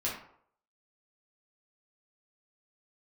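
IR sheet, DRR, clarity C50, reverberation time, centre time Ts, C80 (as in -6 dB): -6.5 dB, 4.5 dB, 0.65 s, 37 ms, 8.5 dB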